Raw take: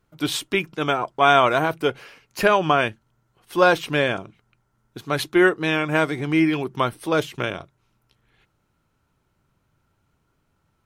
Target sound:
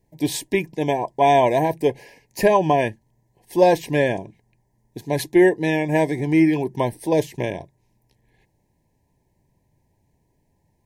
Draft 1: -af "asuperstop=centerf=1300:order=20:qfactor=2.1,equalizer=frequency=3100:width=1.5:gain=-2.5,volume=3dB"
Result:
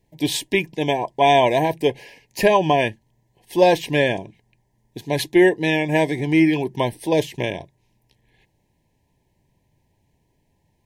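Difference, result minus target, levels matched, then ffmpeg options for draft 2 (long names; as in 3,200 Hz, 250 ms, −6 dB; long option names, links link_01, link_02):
4,000 Hz band +6.5 dB
-af "asuperstop=centerf=1300:order=20:qfactor=2.1,equalizer=frequency=3100:width=1.5:gain=-11.5,volume=3dB"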